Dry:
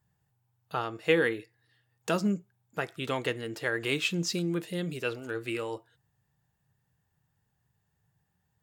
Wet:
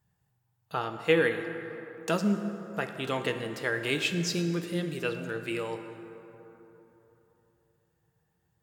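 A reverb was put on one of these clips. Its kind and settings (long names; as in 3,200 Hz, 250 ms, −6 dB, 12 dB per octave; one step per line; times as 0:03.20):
dense smooth reverb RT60 3.5 s, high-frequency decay 0.45×, DRR 6.5 dB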